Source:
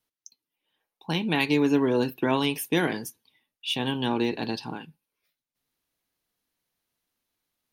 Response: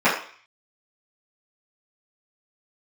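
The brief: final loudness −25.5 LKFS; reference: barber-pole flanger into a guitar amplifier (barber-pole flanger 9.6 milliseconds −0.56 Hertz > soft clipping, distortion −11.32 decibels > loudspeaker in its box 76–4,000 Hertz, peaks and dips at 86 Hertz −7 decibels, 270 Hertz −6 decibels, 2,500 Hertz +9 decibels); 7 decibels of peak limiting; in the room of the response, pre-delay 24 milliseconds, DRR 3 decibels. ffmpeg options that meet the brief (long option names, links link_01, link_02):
-filter_complex "[0:a]alimiter=limit=-16dB:level=0:latency=1,asplit=2[link_01][link_02];[1:a]atrim=start_sample=2205,adelay=24[link_03];[link_02][link_03]afir=irnorm=-1:irlink=0,volume=-24.5dB[link_04];[link_01][link_04]amix=inputs=2:normalize=0,asplit=2[link_05][link_06];[link_06]adelay=9.6,afreqshift=-0.56[link_07];[link_05][link_07]amix=inputs=2:normalize=1,asoftclip=threshold=-27dB,highpass=76,equalizer=frequency=86:width_type=q:width=4:gain=-7,equalizer=frequency=270:width_type=q:width=4:gain=-6,equalizer=frequency=2500:width_type=q:width=4:gain=9,lowpass=frequency=4000:width=0.5412,lowpass=frequency=4000:width=1.3066,volume=7.5dB"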